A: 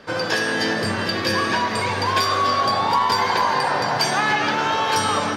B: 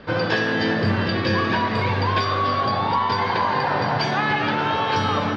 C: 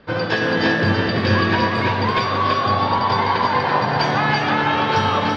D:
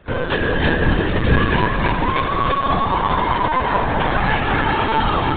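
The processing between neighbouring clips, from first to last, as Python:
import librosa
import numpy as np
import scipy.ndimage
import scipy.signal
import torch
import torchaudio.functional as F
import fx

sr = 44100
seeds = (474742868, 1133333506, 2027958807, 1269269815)

y1 = scipy.signal.sosfilt(scipy.signal.butter(4, 4300.0, 'lowpass', fs=sr, output='sos'), x)
y1 = fx.low_shelf(y1, sr, hz=210.0, db=11.0)
y1 = fx.rider(y1, sr, range_db=10, speed_s=0.5)
y1 = y1 * 10.0 ** (-2.0 / 20.0)
y2 = y1 + 10.0 ** (-3.0 / 20.0) * np.pad(y1, (int(333 * sr / 1000.0), 0))[:len(y1)]
y2 = fx.upward_expand(y2, sr, threshold_db=-35.0, expansion=1.5)
y2 = y2 * 10.0 ** (3.0 / 20.0)
y3 = fx.octave_divider(y2, sr, octaves=1, level_db=0.0)
y3 = fx.lpc_vocoder(y3, sr, seeds[0], excitation='pitch_kept', order=16)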